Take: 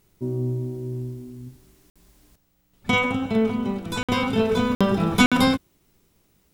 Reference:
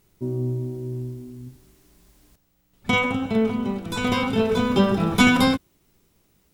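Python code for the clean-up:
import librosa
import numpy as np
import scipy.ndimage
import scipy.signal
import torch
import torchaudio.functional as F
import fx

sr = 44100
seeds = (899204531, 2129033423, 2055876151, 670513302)

y = fx.fix_interpolate(x, sr, at_s=(1.9, 4.03, 4.75, 5.26), length_ms=56.0)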